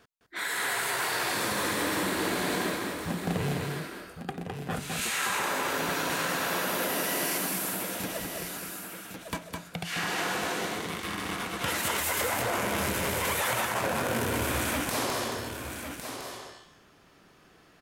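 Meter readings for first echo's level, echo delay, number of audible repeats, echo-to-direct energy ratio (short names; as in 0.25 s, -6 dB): -4.0 dB, 0.209 s, 3, -2.0 dB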